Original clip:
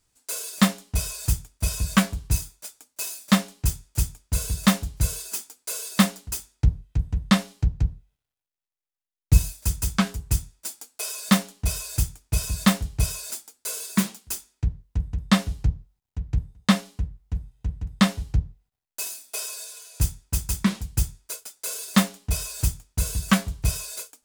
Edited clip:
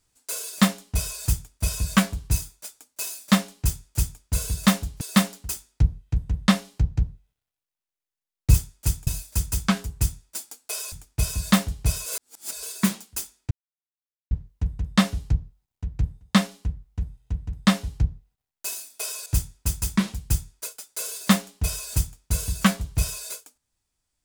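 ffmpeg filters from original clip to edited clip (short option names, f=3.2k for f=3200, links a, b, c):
-filter_complex "[0:a]asplit=9[a][b][c][d][e][f][g][h][i];[a]atrim=end=5.012[j];[b]atrim=start=5.838:end=9.372[k];[c]atrim=start=3.658:end=4.192[l];[d]atrim=start=9.368:end=11.222[m];[e]atrim=start=12.058:end=13.202[n];[f]atrim=start=13.198:end=13.772,asetpts=PTS-STARTPTS,areverse[o];[g]atrim=start=13.768:end=14.65,asetpts=PTS-STARTPTS,afade=t=out:st=0.878:d=0.004:c=hsin,apad=pad_dur=0.8[p];[h]atrim=start=14.65:end=19.602,asetpts=PTS-STARTPTS,afade=t=in:d=0.004:c=hsin[q];[i]atrim=start=19.928[r];[j][k]acrossfade=d=0.004:c1=hsin:c2=hsin[s];[s][l]acrossfade=d=0.004:c1=hsin:c2=hsin[t];[t][m]acrossfade=d=0.004:c1=hsin:c2=hsin[u];[u][n]acrossfade=d=0.004:c1=hsin:c2=hsin[v];[v][o]acrossfade=d=0.004:c1=hsin:c2=hsin[w];[p][q]concat=n=2:v=0:a=1[x];[w][x]acrossfade=d=0.004:c1=hsin:c2=hsin[y];[y][r]acrossfade=d=0.004:c1=hsin:c2=hsin"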